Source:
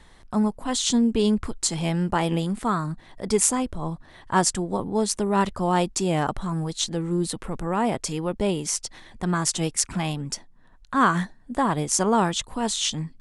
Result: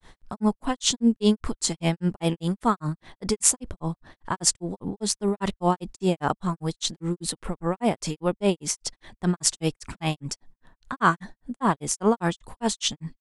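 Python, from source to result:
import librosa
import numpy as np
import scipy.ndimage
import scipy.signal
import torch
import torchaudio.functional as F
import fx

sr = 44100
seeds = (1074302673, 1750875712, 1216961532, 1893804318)

y = fx.granulator(x, sr, seeds[0], grain_ms=167.0, per_s=5.0, spray_ms=20.0, spread_st=0)
y = F.gain(torch.from_numpy(y), 4.0).numpy()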